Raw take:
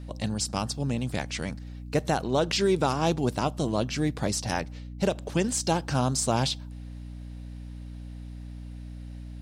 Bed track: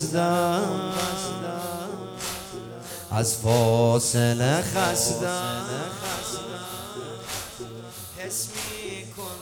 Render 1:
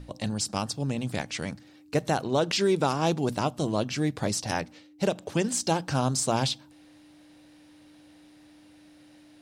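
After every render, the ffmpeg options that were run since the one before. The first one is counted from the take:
-af "bandreject=f=60:t=h:w=6,bandreject=f=120:t=h:w=6,bandreject=f=180:t=h:w=6,bandreject=f=240:t=h:w=6"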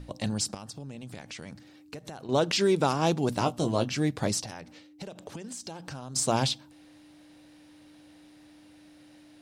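-filter_complex "[0:a]asettb=1/sr,asplit=3[s0][s1][s2];[s0]atrim=end=0.544[s3];[s1]atrim=start=0.54:end=2.29,asetpts=PTS-STARTPTS,afade=t=in:d=0.004:c=qsin,afade=t=out:st=1.746:d=0.004:c=qsin,acompressor=threshold=0.0141:ratio=12:attack=3.2:release=140:knee=1:detection=peak[s4];[s2]atrim=start=2.286[s5];[s3][s4]acrossfade=d=0.004:c1=hsin:c2=qsin[s6];[s6][s5]acrossfade=d=0.004:c1=qsin:c2=hsin,asettb=1/sr,asplit=3[s7][s8][s9];[s7]atrim=end=3.344[s10];[s8]atrim=start=3.34:end=3.89,asetpts=PTS-STARTPTS,afade=t=in:d=0.004:c=qsin,afade=t=out:st=0.546:d=0.004:c=qsin,asplit=2[s11][s12];[s12]adelay=17,volume=0.422[s13];[s11][s13]amix=inputs=2:normalize=0,atrim=end_sample=24255[s14];[s9]atrim=start=3.886[s15];[s10][s14]acrossfade=d=0.004:c1=hsin:c2=qsin[s16];[s16][s15]acrossfade=d=0.004:c1=qsin:c2=hsin,asettb=1/sr,asplit=3[s17][s18][s19];[s17]atrim=end=4.454[s20];[s18]atrim=start=4.45:end=6.16,asetpts=PTS-STARTPTS,afade=t=in:d=0.004:c=qsin,afade=t=out:st=1.706:d=0.004:c=qsin,acompressor=threshold=0.0158:ratio=12:attack=3.2:release=140:knee=1:detection=peak[s21];[s19]atrim=start=6.156[s22];[s20][s21]acrossfade=d=0.004:c1=hsin:c2=qsin[s23];[s23][s22]acrossfade=d=0.004:c1=qsin:c2=hsin"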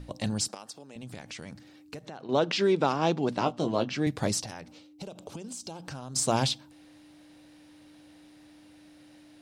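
-filter_complex "[0:a]asettb=1/sr,asplit=3[s0][s1][s2];[s0]atrim=end=0.484[s3];[s1]atrim=start=0.48:end=0.96,asetpts=PTS-STARTPTS,afade=t=in:d=0.004:c=qsin,afade=t=out:st=0.476:d=0.004:c=qsin,highpass=360[s4];[s2]atrim=start=0.956[s5];[s3][s4]acrossfade=d=0.004:c1=hsin:c2=qsin[s6];[s6][s5]acrossfade=d=0.004:c1=qsin:c2=hsin,asettb=1/sr,asplit=3[s7][s8][s9];[s7]atrim=end=2.054[s10];[s8]atrim=start=2.05:end=4.07,asetpts=PTS-STARTPTS,afade=t=in:d=0.004:c=qsin,afade=t=out:st=2.016:d=0.004:c=qsin,highpass=160,lowpass=4400[s11];[s9]atrim=start=4.066[s12];[s10][s11]acrossfade=d=0.004:c1=hsin:c2=qsin[s13];[s13][s12]acrossfade=d=0.004:c1=qsin:c2=hsin,asettb=1/sr,asplit=3[s14][s15][s16];[s14]atrim=end=4.684[s17];[s15]atrim=start=4.68:end=5.85,asetpts=PTS-STARTPTS,afade=t=in:d=0.004:c=qsin,afade=t=out:st=1.166:d=0.004:c=qsin,equalizer=f=1800:t=o:w=0.4:g=-11.5[s18];[s16]atrim=start=5.846[s19];[s17][s18]acrossfade=d=0.004:c1=hsin:c2=qsin[s20];[s20][s19]acrossfade=d=0.004:c1=qsin:c2=hsin"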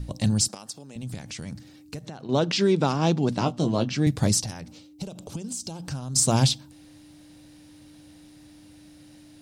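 -af "bass=f=250:g=11,treble=f=4000:g=8"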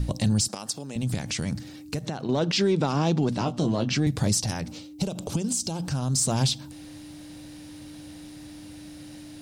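-af "acontrast=88,alimiter=limit=0.168:level=0:latency=1:release=140"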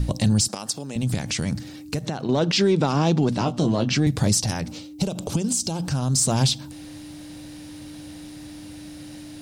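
-af "volume=1.5"

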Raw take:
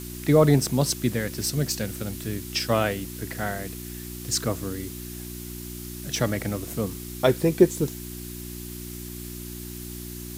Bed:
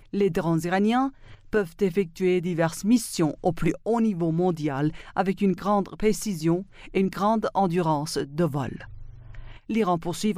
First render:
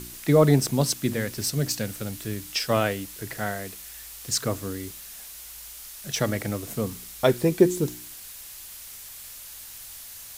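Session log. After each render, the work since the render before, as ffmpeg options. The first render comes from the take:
-af "bandreject=f=60:t=h:w=4,bandreject=f=120:t=h:w=4,bandreject=f=180:t=h:w=4,bandreject=f=240:t=h:w=4,bandreject=f=300:t=h:w=4,bandreject=f=360:t=h:w=4"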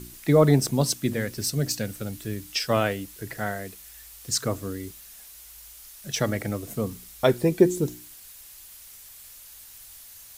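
-af "afftdn=nr=6:nf=-42"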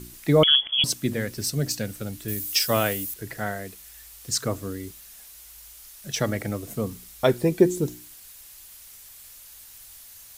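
-filter_complex "[0:a]asettb=1/sr,asplit=3[s0][s1][s2];[s0]atrim=end=0.434[s3];[s1]atrim=start=0.43:end=0.84,asetpts=PTS-STARTPTS,afade=t=in:d=0.004:c=qsin,afade=t=out:st=0.406:d=0.004:c=qsin,lowpass=f=3000:t=q:w=0.5098,lowpass=f=3000:t=q:w=0.6013,lowpass=f=3000:t=q:w=0.9,lowpass=f=3000:t=q:w=2.563,afreqshift=-3500[s4];[s2]atrim=start=0.836[s5];[s3][s4]acrossfade=d=0.004:c1=hsin:c2=qsin[s6];[s6][s5]acrossfade=d=0.004:c1=qsin:c2=hsin,asettb=1/sr,asplit=3[s7][s8][s9];[s7]atrim=end=2.284[s10];[s8]atrim=start=2.28:end=3.14,asetpts=PTS-STARTPTS,afade=t=in:d=0.004:c=qsin,afade=t=out:st=0.856:d=0.004:c=qsin,aemphasis=mode=production:type=50fm[s11];[s9]atrim=start=3.136[s12];[s10][s11]acrossfade=d=0.004:c1=hsin:c2=qsin[s13];[s13][s12]acrossfade=d=0.004:c1=qsin:c2=hsin"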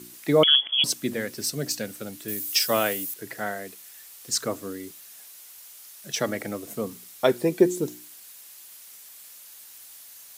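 -af "highpass=220"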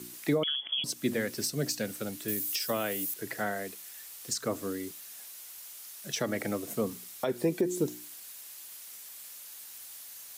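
-filter_complex "[0:a]alimiter=limit=0.141:level=0:latency=1:release=213,acrossover=split=390[s0][s1];[s1]acompressor=threshold=0.0355:ratio=6[s2];[s0][s2]amix=inputs=2:normalize=0"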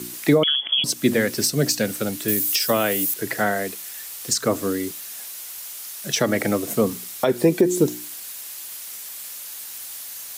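-af "volume=3.55"

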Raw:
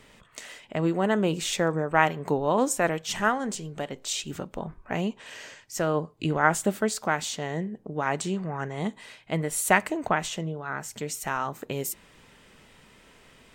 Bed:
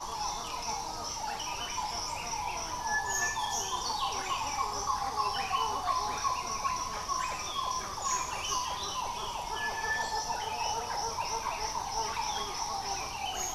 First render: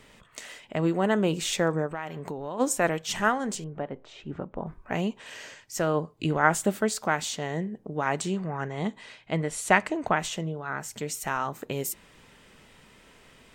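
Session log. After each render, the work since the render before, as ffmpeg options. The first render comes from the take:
-filter_complex "[0:a]asplit=3[s0][s1][s2];[s0]afade=t=out:st=1.86:d=0.02[s3];[s1]acompressor=threshold=0.0251:ratio=4:attack=3.2:release=140:knee=1:detection=peak,afade=t=in:st=1.86:d=0.02,afade=t=out:st=2.59:d=0.02[s4];[s2]afade=t=in:st=2.59:d=0.02[s5];[s3][s4][s5]amix=inputs=3:normalize=0,asettb=1/sr,asplit=3[s6][s7][s8];[s6]atrim=end=3.644[s9];[s7]atrim=start=3.64:end=4.67,asetpts=PTS-STARTPTS,afade=t=in:d=0.004:c=qsin,afade=t=out:st=1.026:d=0.004:c=qsin,lowpass=1400[s10];[s8]atrim=start=4.666[s11];[s9][s10]acrossfade=d=0.004:c1=hsin:c2=qsin[s12];[s12][s11]acrossfade=d=0.004:c1=qsin:c2=hsin,asettb=1/sr,asplit=3[s13][s14][s15];[s13]atrim=end=8.484[s16];[s14]atrim=start=8.48:end=10.07,asetpts=PTS-STARTPTS,afade=t=in:d=0.004:c=qsin,afade=t=out:st=1.586:d=0.004:c=qsin,lowpass=6900[s17];[s15]atrim=start=10.066[s18];[s16][s17]acrossfade=d=0.004:c1=hsin:c2=qsin[s19];[s19][s18]acrossfade=d=0.004:c1=qsin:c2=hsin"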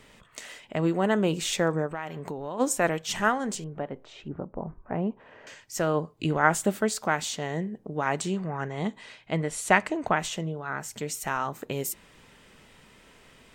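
-filter_complex "[0:a]asettb=1/sr,asplit=3[s0][s1][s2];[s0]atrim=end=4.284[s3];[s1]atrim=start=4.28:end=5.47,asetpts=PTS-STARTPTS,afade=t=in:d=0.004:c=qsin,afade=t=out:st=1.186:d=0.004:c=qsin,lowpass=1100[s4];[s2]atrim=start=5.466[s5];[s3][s4]acrossfade=d=0.004:c1=hsin:c2=qsin[s6];[s6][s5]acrossfade=d=0.004:c1=qsin:c2=hsin"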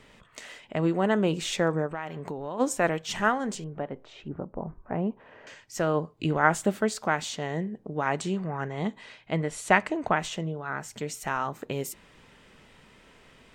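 -af "highshelf=f=7800:g=-9.5"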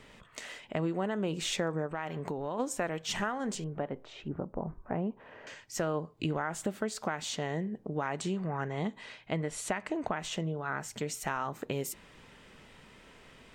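-af "alimiter=limit=0.178:level=0:latency=1:release=216,acompressor=threshold=0.0316:ratio=3"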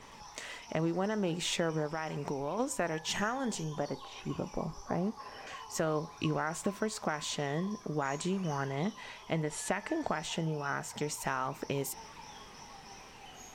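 -filter_complex "[1:a]volume=0.141[s0];[0:a][s0]amix=inputs=2:normalize=0"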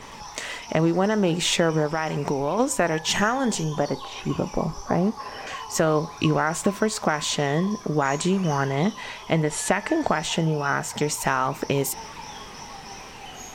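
-af "volume=3.55"

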